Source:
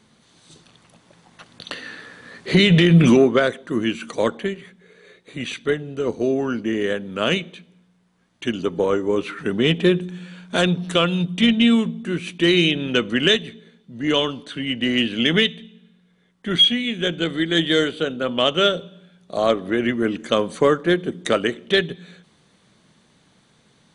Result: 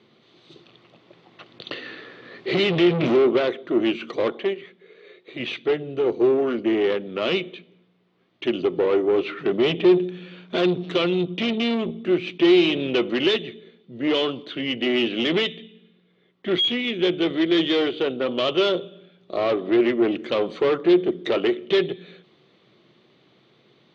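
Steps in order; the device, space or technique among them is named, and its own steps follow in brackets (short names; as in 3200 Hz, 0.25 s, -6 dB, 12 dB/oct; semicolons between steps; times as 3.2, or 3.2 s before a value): guitar amplifier (tube stage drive 21 dB, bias 0.5; tone controls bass -10 dB, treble 0 dB; speaker cabinet 83–3900 Hz, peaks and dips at 130 Hz +8 dB, 360 Hz +10 dB, 910 Hz -6 dB, 1600 Hz -8 dB); 4.32–5.4 low shelf 190 Hz -9.5 dB; gain +4 dB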